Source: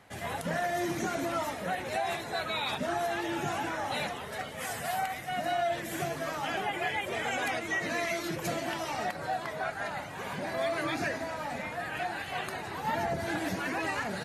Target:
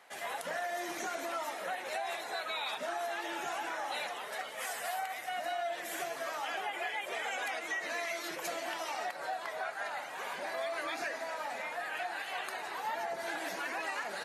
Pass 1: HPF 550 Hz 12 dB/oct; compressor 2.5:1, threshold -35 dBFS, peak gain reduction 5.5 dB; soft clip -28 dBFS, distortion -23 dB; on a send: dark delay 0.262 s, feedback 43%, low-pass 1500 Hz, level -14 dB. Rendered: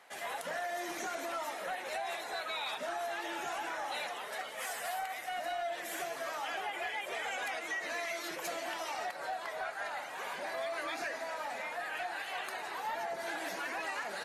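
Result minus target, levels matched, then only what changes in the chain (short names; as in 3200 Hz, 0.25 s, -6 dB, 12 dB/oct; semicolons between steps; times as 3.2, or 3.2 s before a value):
soft clip: distortion +20 dB
change: soft clip -17 dBFS, distortion -43 dB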